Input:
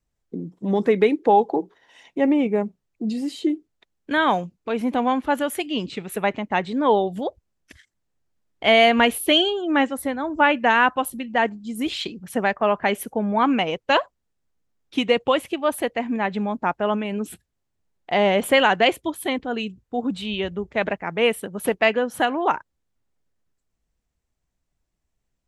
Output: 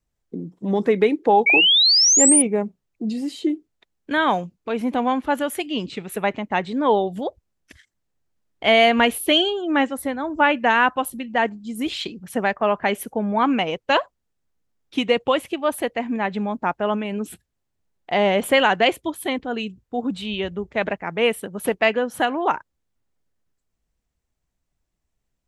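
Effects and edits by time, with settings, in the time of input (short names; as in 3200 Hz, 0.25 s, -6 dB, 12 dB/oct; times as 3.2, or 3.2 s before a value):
1.46–2.42 painted sound rise 2200–10000 Hz -15 dBFS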